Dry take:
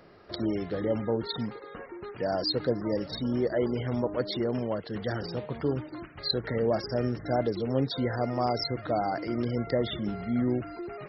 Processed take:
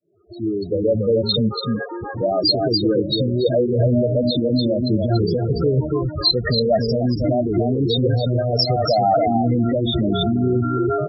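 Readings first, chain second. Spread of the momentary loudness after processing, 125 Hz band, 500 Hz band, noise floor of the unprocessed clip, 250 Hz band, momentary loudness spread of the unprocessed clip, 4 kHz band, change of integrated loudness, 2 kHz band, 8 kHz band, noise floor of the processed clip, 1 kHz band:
5 LU, +13.5 dB, +10.5 dB, -46 dBFS, +10.5 dB, 7 LU, +13.5 dB, +11.0 dB, +4.5 dB, no reading, -31 dBFS, +10.5 dB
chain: fade-in on the opening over 2.29 s; dynamic bell 4 kHz, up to +4 dB, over -50 dBFS, Q 7.2; compression 8:1, threshold -30 dBFS, peak gain reduction 11 dB; loudest bins only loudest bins 8; delay 285 ms -5.5 dB; loudness maximiser +29.5 dB; Shepard-style flanger rising 0.4 Hz; trim -4.5 dB

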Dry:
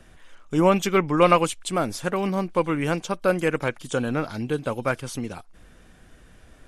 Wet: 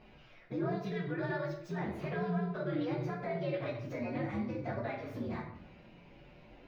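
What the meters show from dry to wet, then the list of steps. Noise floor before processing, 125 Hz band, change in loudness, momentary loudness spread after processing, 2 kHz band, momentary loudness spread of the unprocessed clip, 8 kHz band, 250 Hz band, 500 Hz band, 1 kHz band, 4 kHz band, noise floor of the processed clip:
-52 dBFS, -8.5 dB, -13.5 dB, 14 LU, -13.5 dB, 10 LU, under -30 dB, -11.5 dB, -14.0 dB, -17.0 dB, -19.0 dB, -58 dBFS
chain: frequency axis rescaled in octaves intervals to 123%; compression, threshold -33 dBFS, peak gain reduction 17 dB; peak limiter -31 dBFS, peak gain reduction 8.5 dB; high-pass 140 Hz 6 dB/octave; distance through air 290 m; simulated room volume 140 m³, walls mixed, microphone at 0.95 m; trim +1.5 dB

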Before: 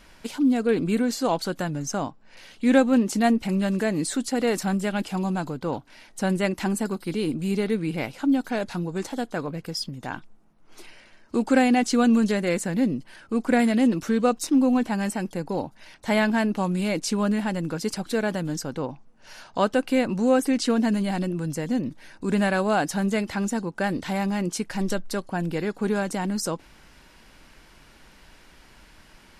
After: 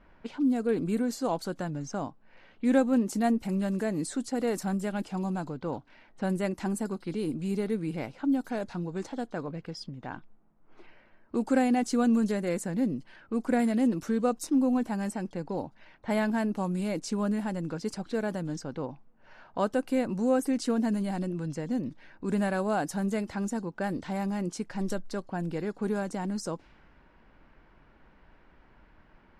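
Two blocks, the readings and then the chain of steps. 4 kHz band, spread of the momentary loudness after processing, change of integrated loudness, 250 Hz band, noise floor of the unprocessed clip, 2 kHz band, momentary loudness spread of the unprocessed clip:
-10.5 dB, 11 LU, -5.5 dB, -5.0 dB, -53 dBFS, -9.0 dB, 10 LU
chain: level-controlled noise filter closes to 1.4 kHz, open at -21 dBFS; dynamic bell 3 kHz, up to -7 dB, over -44 dBFS, Q 0.72; trim -5 dB

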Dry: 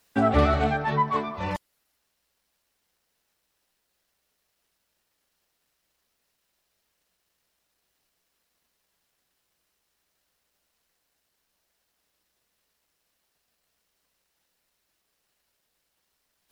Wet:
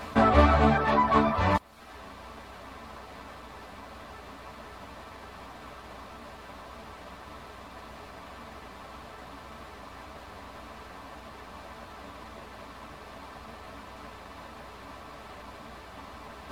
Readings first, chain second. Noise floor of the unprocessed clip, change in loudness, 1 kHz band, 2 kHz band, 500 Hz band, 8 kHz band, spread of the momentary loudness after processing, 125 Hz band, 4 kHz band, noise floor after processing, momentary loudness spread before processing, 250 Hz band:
-77 dBFS, +1.5 dB, +2.5 dB, +2.5 dB, +1.0 dB, no reading, 7 LU, +1.0 dB, +3.5 dB, -47 dBFS, 11 LU, +2.0 dB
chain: spectral levelling over time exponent 0.4; reverb removal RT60 0.77 s; three-phase chorus; trim +2 dB

